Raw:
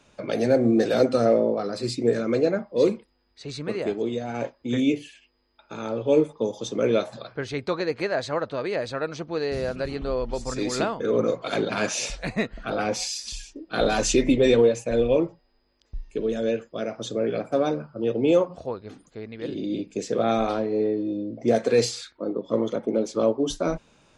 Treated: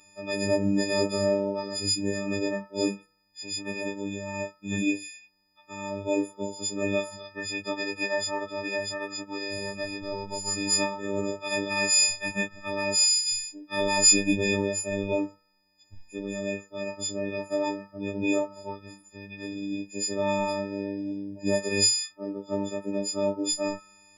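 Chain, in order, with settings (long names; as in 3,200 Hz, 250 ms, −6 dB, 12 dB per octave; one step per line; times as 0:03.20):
every partial snapped to a pitch grid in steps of 6 semitones
phases set to zero 99.4 Hz
hum removal 161.2 Hz, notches 18
level −3 dB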